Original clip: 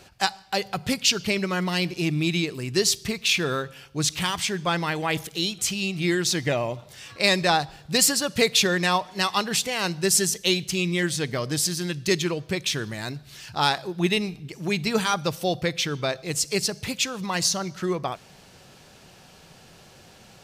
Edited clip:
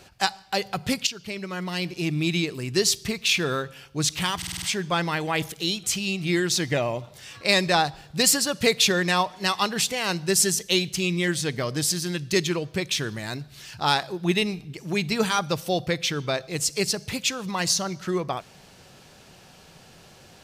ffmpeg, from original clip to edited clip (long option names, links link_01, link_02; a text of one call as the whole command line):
ffmpeg -i in.wav -filter_complex "[0:a]asplit=7[link_01][link_02][link_03][link_04][link_05][link_06][link_07];[link_01]atrim=end=1.07,asetpts=PTS-STARTPTS,afade=type=out:start_time=1.066:duration=0.004:curve=hsin:silence=0.199526[link_08];[link_02]atrim=start=1.07:end=4.422,asetpts=PTS-STARTPTS,afade=type=in:duration=1.27:silence=0.199526[link_09];[link_03]atrim=start=4.368:end=4.422[link_10];[link_04]atrim=start=4.368:end=4.422[link_11];[link_05]atrim=start=4.368:end=4.422[link_12];[link_06]atrim=start=4.368:end=4.422[link_13];[link_07]atrim=start=4.368[link_14];[link_08][link_09]concat=n=2:v=0:a=1[link_15];[link_15][link_10]acrossfade=duration=0.004:curve1=hsin:curve2=hsin[link_16];[link_16][link_11]acrossfade=duration=0.004:curve1=hsin:curve2=hsin[link_17];[link_17][link_12]acrossfade=duration=0.004:curve1=hsin:curve2=hsin[link_18];[link_18][link_13]acrossfade=duration=0.004:curve1=hsin:curve2=hsin[link_19];[link_19][link_14]acrossfade=duration=0.004:curve1=hsin:curve2=hsin" out.wav